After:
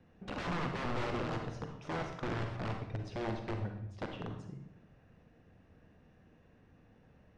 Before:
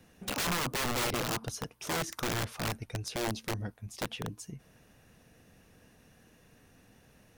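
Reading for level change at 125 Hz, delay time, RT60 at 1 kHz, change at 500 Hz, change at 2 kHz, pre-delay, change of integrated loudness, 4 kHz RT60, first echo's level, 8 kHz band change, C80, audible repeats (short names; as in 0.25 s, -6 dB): -1.0 dB, none, 0.75 s, -2.5 dB, -6.5 dB, 36 ms, -5.0 dB, 0.60 s, none, under -20 dB, 8.5 dB, none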